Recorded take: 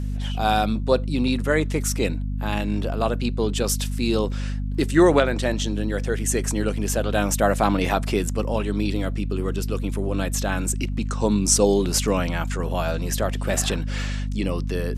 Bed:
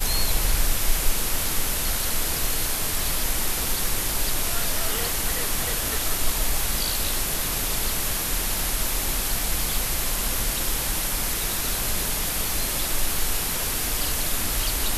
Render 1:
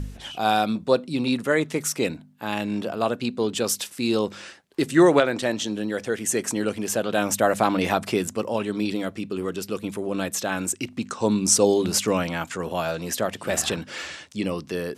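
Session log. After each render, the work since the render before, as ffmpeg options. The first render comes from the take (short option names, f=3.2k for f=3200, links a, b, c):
-af "bandreject=f=50:t=h:w=4,bandreject=f=100:t=h:w=4,bandreject=f=150:t=h:w=4,bandreject=f=200:t=h:w=4,bandreject=f=250:t=h:w=4"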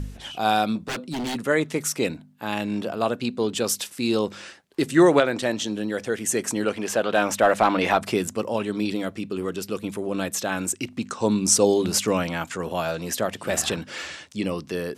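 -filter_complex "[0:a]asplit=3[a][b][c];[a]afade=t=out:st=0.8:d=0.02[d];[b]aeval=exprs='0.0668*(abs(mod(val(0)/0.0668+3,4)-2)-1)':c=same,afade=t=in:st=0.8:d=0.02,afade=t=out:st=1.34:d=0.02[e];[c]afade=t=in:st=1.34:d=0.02[f];[d][e][f]amix=inputs=3:normalize=0,asettb=1/sr,asplit=3[g][h][i];[g]atrim=end=6.654[j];[h]atrim=start=6.65:end=8.01,asetpts=PTS-STARTPTS,afade=t=in:d=0.004:c=qsin,afade=t=out:st=1.356:d=0.004:c=qsin,asplit=2[k][l];[l]highpass=f=720:p=1,volume=11dB,asoftclip=type=tanh:threshold=-5.5dB[m];[k][m]amix=inputs=2:normalize=0,lowpass=f=2.4k:p=1,volume=-6dB[n];[i]atrim=start=8.006[o];[j][n]acrossfade=d=0.004:c1=hsin:c2=qsin[p];[p][o]acrossfade=d=0.004:c1=qsin:c2=hsin"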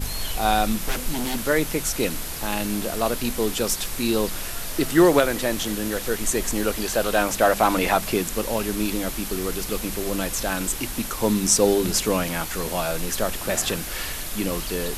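-filter_complex "[1:a]volume=-6.5dB[a];[0:a][a]amix=inputs=2:normalize=0"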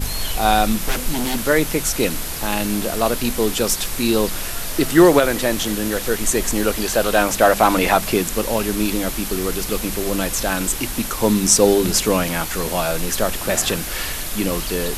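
-af "volume=4.5dB,alimiter=limit=-1dB:level=0:latency=1"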